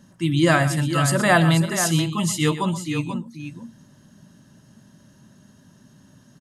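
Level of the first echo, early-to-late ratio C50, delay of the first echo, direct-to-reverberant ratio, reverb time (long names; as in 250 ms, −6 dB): −13.0 dB, no reverb audible, 122 ms, no reverb audible, no reverb audible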